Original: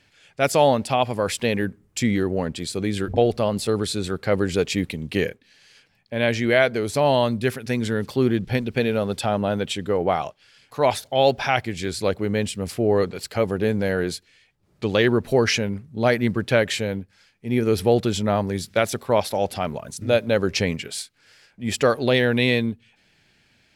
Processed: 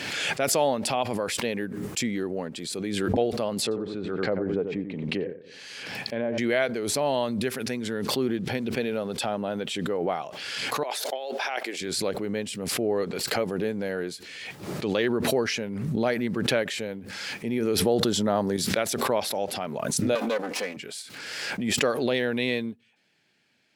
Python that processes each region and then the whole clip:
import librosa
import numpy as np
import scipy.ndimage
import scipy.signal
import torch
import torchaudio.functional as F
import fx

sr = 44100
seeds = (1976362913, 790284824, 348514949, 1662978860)

y = fx.chain(x, sr, fx.env_lowpass_down(base_hz=900.0, full_db=-19.0),
    fx.echo_filtered(ms=90, feedback_pct=23, hz=2100.0, wet_db=-9), at=(3.62, 6.38))
y = fx.chain(y, sr, fx.highpass(hz=350.0, slope=24),
    fx.over_compress(threshold_db=-25.0, ratio=-1.0), at=(10.83, 11.81))
y = fx.chain(y, sr, fx.peak_eq(hz=2400.0, db=-12.0, octaves=0.31),
    fx.env_flatten(amount_pct=70), at=(17.85, 18.57))
y = fx.chain(y, sr, fx.lower_of_two(delay_ms=4.0),
    fx.highpass(hz=280.0, slope=12), at=(20.15, 20.77))
y = scipy.signal.sosfilt(scipy.signal.butter(2, 210.0, 'highpass', fs=sr, output='sos'), y)
y = fx.low_shelf(y, sr, hz=350.0, db=3.0)
y = fx.pre_swell(y, sr, db_per_s=28.0)
y = y * 10.0 ** (-7.5 / 20.0)